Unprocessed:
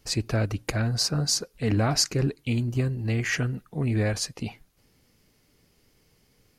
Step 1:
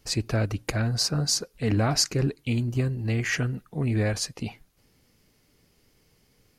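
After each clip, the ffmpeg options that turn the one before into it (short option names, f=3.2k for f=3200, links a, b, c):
-af anull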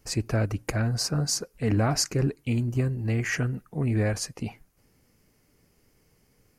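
-af "equalizer=f=3.7k:w=1.8:g=-9"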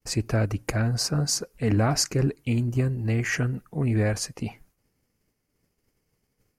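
-af "agate=range=-33dB:threshold=-55dB:ratio=3:detection=peak,volume=1.5dB"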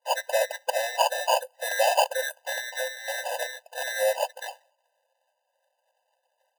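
-af "acrusher=samples=23:mix=1:aa=0.000001,afftfilt=real='re*eq(mod(floor(b*sr/1024/510),2),1)':imag='im*eq(mod(floor(b*sr/1024/510),2),1)':win_size=1024:overlap=0.75,volume=8dB"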